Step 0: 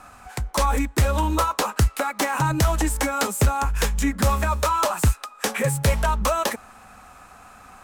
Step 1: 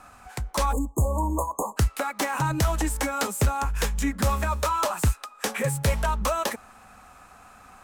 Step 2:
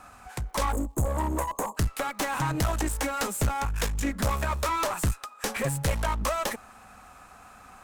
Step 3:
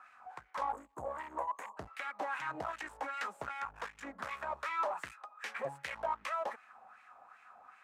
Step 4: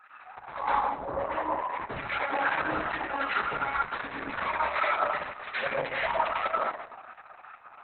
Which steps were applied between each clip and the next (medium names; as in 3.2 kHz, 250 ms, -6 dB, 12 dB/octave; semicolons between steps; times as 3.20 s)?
spectral selection erased 0.72–1.77 s, 1.2–6.4 kHz; trim -3.5 dB
one-sided clip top -30 dBFS; crackle 200 per s -58 dBFS
LFO band-pass sine 2.6 Hz 710–2200 Hz; trim -2 dB
plate-style reverb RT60 0.98 s, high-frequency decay 0.9×, pre-delay 90 ms, DRR -7 dB; trim +3.5 dB; Opus 6 kbps 48 kHz